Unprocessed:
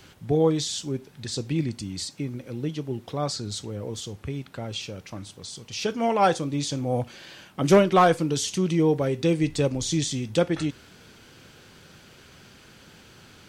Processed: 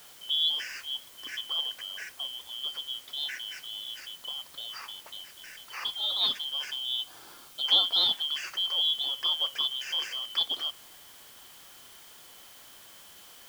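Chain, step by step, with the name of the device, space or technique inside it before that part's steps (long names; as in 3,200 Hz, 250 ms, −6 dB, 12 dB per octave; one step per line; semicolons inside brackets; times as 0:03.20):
split-band scrambled radio (band-splitting scrambler in four parts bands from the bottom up 2413; band-pass filter 380–3,200 Hz; white noise bed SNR 19 dB)
0:06.53–0:07.69: notch filter 1,900 Hz, Q 6.6
level −3.5 dB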